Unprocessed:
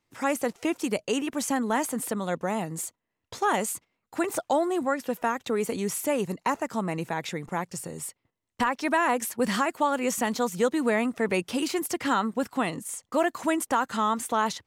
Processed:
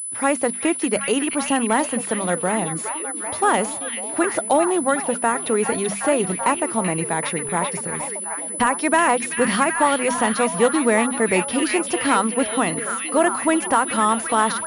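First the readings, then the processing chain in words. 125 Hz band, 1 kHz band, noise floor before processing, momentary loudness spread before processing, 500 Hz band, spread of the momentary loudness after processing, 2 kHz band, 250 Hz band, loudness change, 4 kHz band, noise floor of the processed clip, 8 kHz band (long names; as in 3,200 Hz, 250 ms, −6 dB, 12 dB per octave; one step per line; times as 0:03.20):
+6.0 dB, +7.0 dB, −83 dBFS, 7 LU, +7.0 dB, 6 LU, +8.0 dB, +6.0 dB, +7.5 dB, +6.5 dB, −30 dBFS, +12.0 dB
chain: mains-hum notches 50/100/150/200/250 Hz
on a send: echo through a band-pass that steps 384 ms, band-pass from 2,900 Hz, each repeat −0.7 octaves, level −2 dB
on the sum: switching amplifier with a slow clock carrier 10,000 Hz
level +6.5 dB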